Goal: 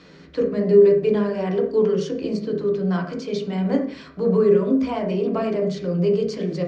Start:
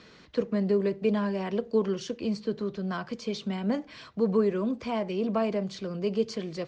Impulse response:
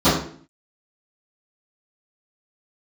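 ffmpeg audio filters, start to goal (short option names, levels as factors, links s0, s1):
-filter_complex "[0:a]asplit=2[s0][s1];[s1]equalizer=f=500:t=o:w=1:g=5,equalizer=f=1000:t=o:w=1:g=-5,equalizer=f=2000:t=o:w=1:g=9,equalizer=f=4000:t=o:w=1:g=-9[s2];[1:a]atrim=start_sample=2205[s3];[s2][s3]afir=irnorm=-1:irlink=0,volume=0.0562[s4];[s0][s4]amix=inputs=2:normalize=0,volume=1.19"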